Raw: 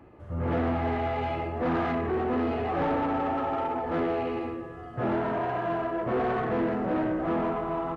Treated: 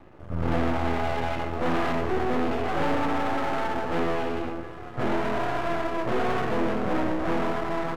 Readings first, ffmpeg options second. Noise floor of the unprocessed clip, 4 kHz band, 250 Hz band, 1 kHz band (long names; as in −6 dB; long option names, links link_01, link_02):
−42 dBFS, +8.0 dB, +0.5 dB, +1.5 dB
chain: -af "aeval=exprs='max(val(0),0)':channel_layout=same,volume=6dB"